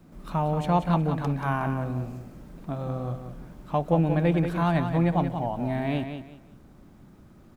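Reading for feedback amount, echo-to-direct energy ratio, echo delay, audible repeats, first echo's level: 26%, −7.5 dB, 182 ms, 3, −8.0 dB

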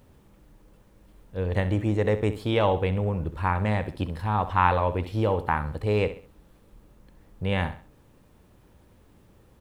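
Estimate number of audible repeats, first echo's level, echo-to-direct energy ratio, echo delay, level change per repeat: 3, −13.0 dB, −12.5 dB, 66 ms, −9.0 dB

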